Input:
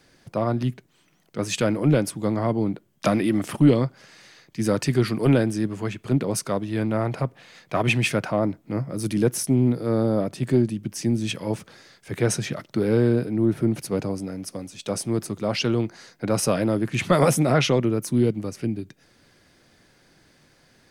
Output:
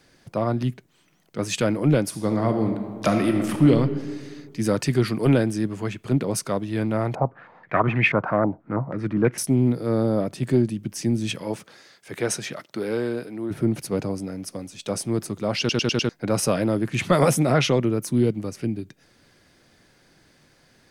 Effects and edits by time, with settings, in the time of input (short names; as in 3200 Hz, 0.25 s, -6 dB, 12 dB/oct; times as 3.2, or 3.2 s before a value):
2.06–3.71 reverb throw, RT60 1.8 s, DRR 5 dB
7.15–9.38 stepped low-pass 6.2 Hz 820–2100 Hz
11.42–13.5 HPF 220 Hz -> 780 Hz 6 dB/oct
15.59 stutter in place 0.10 s, 5 plays